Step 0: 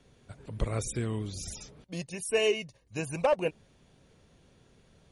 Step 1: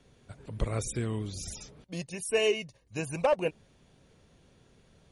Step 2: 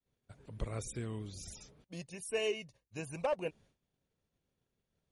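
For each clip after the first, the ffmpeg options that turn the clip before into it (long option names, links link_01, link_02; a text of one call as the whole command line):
ffmpeg -i in.wav -af anull out.wav
ffmpeg -i in.wav -af "agate=range=-33dB:threshold=-50dB:ratio=3:detection=peak,volume=-8dB" out.wav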